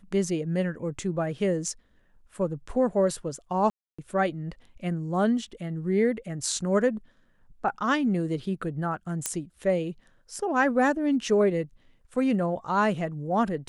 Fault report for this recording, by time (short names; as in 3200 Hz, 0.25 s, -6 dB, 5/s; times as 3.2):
3.7–3.98 gap 0.285 s
9.26 pop -10 dBFS